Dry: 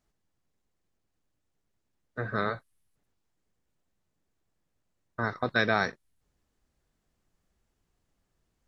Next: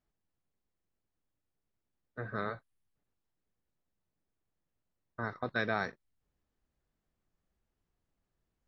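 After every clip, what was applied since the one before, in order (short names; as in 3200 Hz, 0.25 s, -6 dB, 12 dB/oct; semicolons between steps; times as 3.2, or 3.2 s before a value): high shelf 5300 Hz -10.5 dB; gain -6.5 dB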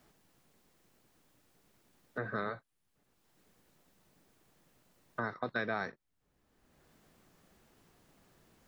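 three-band squash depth 70%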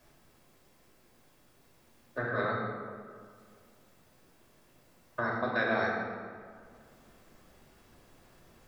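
reverb RT60 2.1 s, pre-delay 3 ms, DRR -3.5 dB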